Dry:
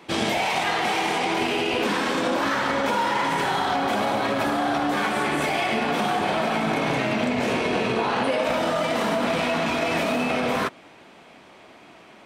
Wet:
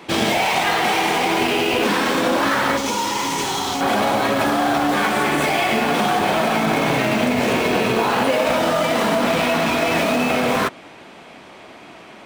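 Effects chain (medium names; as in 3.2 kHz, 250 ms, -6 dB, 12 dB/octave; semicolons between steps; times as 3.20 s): in parallel at -11 dB: integer overflow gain 26.5 dB; 2.77–3.81 s: on the sum: fifteen-band graphic EQ 160 Hz -6 dB, 630 Hz -10 dB, 1.6 kHz -11 dB, 6.3 kHz +9 dB; trim +5 dB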